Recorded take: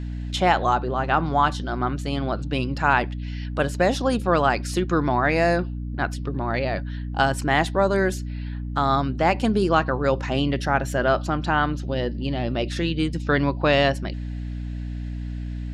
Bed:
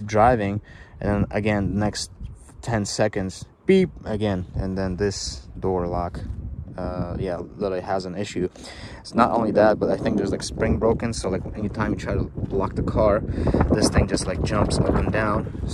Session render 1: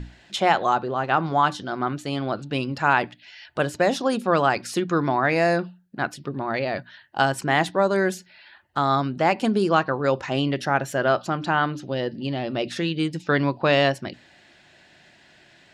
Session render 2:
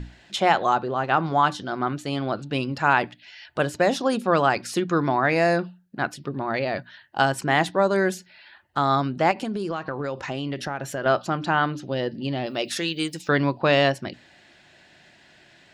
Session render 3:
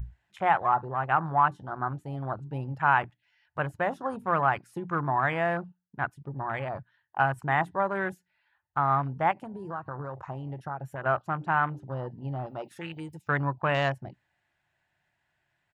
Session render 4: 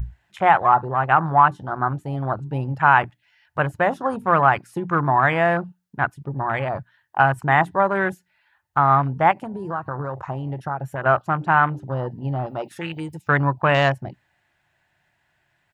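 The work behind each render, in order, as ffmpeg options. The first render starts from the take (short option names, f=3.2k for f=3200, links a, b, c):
-af "bandreject=f=60:t=h:w=6,bandreject=f=120:t=h:w=6,bandreject=f=180:t=h:w=6,bandreject=f=240:t=h:w=6,bandreject=f=300:t=h:w=6"
-filter_complex "[0:a]asettb=1/sr,asplit=3[a][b][c];[a]atrim=end=9.314[d];[b]atrim=start=9.31:end=11.06,asetpts=PTS-STARTPTS,afade=t=in:d=0.004:c=qsin,afade=t=out:st=1.746:d=0.004:c=qsin,acompressor=threshold=-24dB:ratio=10:attack=3.2:release=140:knee=1:detection=peak[e];[c]atrim=start=11.056[f];[d][e]acrossfade=d=0.004:c1=hsin:c2=qsin[g];[g][f]acrossfade=d=0.004:c1=qsin:c2=hsin,asettb=1/sr,asplit=3[h][i][j];[h]atrim=end=12.464[k];[i]atrim=start=12.46:end=13.29,asetpts=PTS-STARTPTS,afade=t=in:d=0.004:c=qsin,afade=t=out:st=0.826:d=0.004:c=qsin,aemphasis=mode=production:type=bsi[l];[j]atrim=start=13.286[m];[k][l]acrossfade=d=0.004:c1=hsin:c2=qsin[n];[n][m]acrossfade=d=0.004:c1=qsin:c2=hsin"
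-af "afwtdn=0.0355,firequalizer=gain_entry='entry(120,0);entry(220,-13);entry(510,-11);entry(880,-1);entry(4300,-15);entry(11000,-1)':delay=0.05:min_phase=1"
-af "volume=8.5dB,alimiter=limit=-2dB:level=0:latency=1"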